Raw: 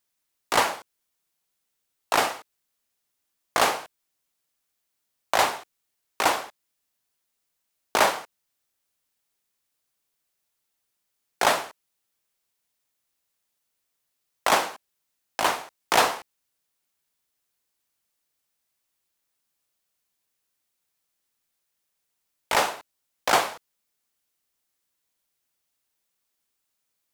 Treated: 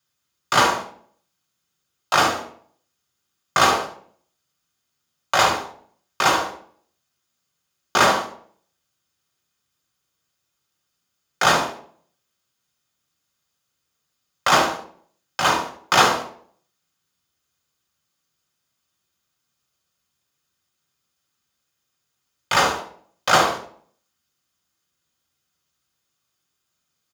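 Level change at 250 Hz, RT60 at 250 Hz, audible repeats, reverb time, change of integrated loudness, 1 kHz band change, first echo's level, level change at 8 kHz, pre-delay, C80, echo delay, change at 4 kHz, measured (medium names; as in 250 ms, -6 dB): +7.5 dB, 0.65 s, 1, 0.55 s, +5.0 dB, +5.0 dB, -10.5 dB, +4.5 dB, 3 ms, 12.5 dB, 72 ms, +6.0 dB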